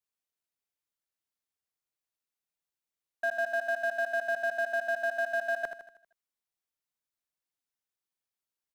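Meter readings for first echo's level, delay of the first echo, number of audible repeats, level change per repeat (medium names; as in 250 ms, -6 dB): -9.0 dB, 79 ms, 5, -6.0 dB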